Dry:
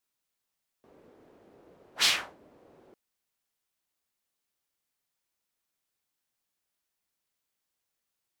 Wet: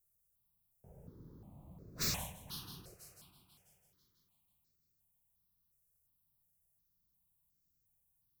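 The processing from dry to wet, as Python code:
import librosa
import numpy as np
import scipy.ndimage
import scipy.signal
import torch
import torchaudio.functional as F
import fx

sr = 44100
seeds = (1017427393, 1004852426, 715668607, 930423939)

y = fx.curve_eq(x, sr, hz=(160.0, 240.0, 510.0, 1000.0, 1900.0, 12000.0), db=(0, -10, -13, -11, -25, 2))
y = fx.echo_heads(y, sr, ms=164, heads='first and third', feedback_pct=47, wet_db=-15.0)
y = 10.0 ** (-32.5 / 20.0) * (np.abs((y / 10.0 ** (-32.5 / 20.0) + 3.0) % 4.0 - 2.0) - 1.0)
y = fx.low_shelf(y, sr, hz=470.0, db=9.5)
y = fx.phaser_held(y, sr, hz=2.8, low_hz=930.0, high_hz=3100.0)
y = y * 10.0 ** (6.5 / 20.0)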